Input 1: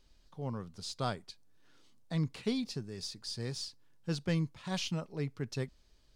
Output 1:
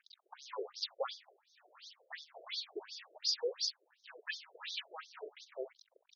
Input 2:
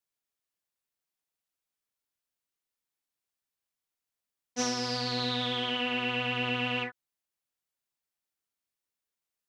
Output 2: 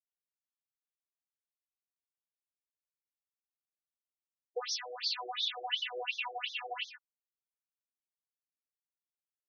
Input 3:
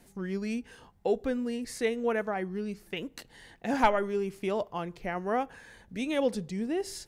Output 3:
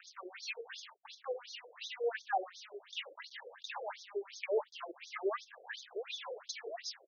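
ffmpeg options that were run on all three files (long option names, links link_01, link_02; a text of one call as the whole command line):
ffmpeg -i in.wav -af "aphaser=in_gain=1:out_gain=1:delay=3.8:decay=0.68:speed=0.5:type=triangular,highshelf=frequency=5500:gain=7.5,acompressor=threshold=-38dB:ratio=4,bandreject=frequency=50:width_type=h:width=6,bandreject=frequency=100:width_type=h:width=6,acrusher=bits=7:mix=0:aa=0.5,aecho=1:1:46|66:0.178|0.224,afftfilt=real='re*between(b*sr/1024,480*pow(4800/480,0.5+0.5*sin(2*PI*2.8*pts/sr))/1.41,480*pow(4800/480,0.5+0.5*sin(2*PI*2.8*pts/sr))*1.41)':imag='im*between(b*sr/1024,480*pow(4800/480,0.5+0.5*sin(2*PI*2.8*pts/sr))/1.41,480*pow(4800/480,0.5+0.5*sin(2*PI*2.8*pts/sr))*1.41)':win_size=1024:overlap=0.75,volume=8dB" out.wav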